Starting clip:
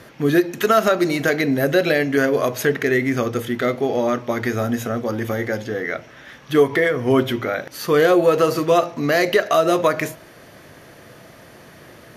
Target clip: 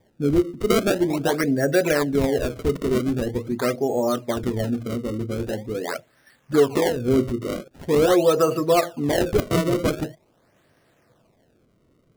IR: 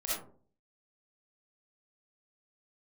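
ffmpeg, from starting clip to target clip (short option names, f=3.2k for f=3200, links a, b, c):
-filter_complex "[0:a]afftdn=nr=15:nf=-26,equalizer=f=8.7k:t=o:w=0.47:g=-6.5,acrossover=split=590[a][b];[b]acrusher=samples=30:mix=1:aa=0.000001:lfo=1:lforange=48:lforate=0.44[c];[a][c]amix=inputs=2:normalize=0,volume=-2dB"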